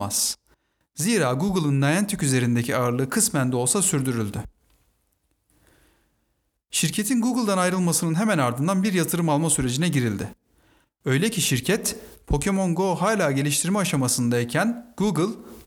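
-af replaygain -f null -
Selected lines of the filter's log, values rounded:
track_gain = +5.5 dB
track_peak = 0.294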